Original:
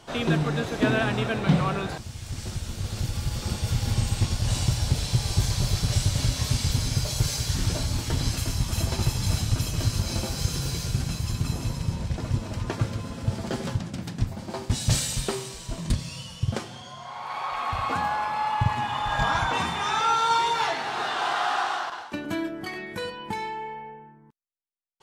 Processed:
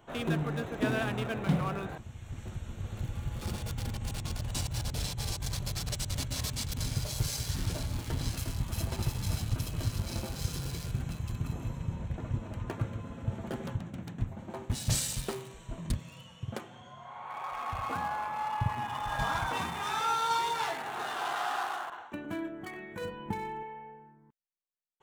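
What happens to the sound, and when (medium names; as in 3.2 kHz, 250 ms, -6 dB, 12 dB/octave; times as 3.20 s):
3.41–6.86 s: compressor with a negative ratio -27 dBFS
15.98–16.78 s: high-pass 180 Hz 6 dB/octave
23.01–23.63 s: bass shelf 320 Hz +10 dB
whole clip: local Wiener filter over 9 samples; treble shelf 8.3 kHz +11 dB; trim -7 dB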